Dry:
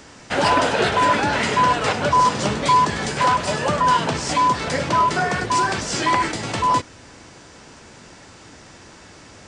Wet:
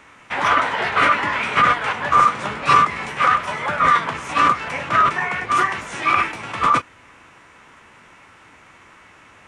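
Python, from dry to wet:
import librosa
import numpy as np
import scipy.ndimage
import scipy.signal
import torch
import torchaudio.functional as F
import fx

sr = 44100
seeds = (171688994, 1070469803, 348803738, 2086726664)

y = fx.graphic_eq_10(x, sr, hz=(1000, 2000, 4000, 8000), db=(10, 9, -5, -5))
y = fx.formant_shift(y, sr, semitones=3)
y = y * 10.0 ** (-9.0 / 20.0)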